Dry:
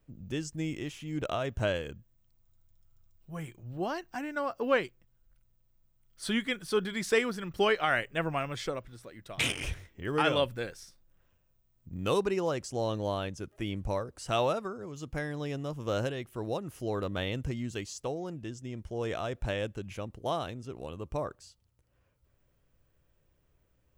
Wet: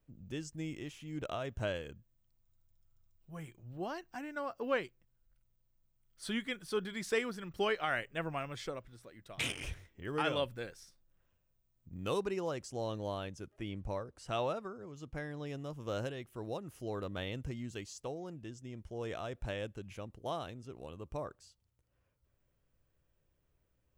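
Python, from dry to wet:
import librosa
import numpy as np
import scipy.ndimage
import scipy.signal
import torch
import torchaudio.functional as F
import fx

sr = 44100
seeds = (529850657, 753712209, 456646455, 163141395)

y = fx.high_shelf(x, sr, hz=6400.0, db=-7.5, at=(13.48, 15.47))
y = y * librosa.db_to_amplitude(-6.5)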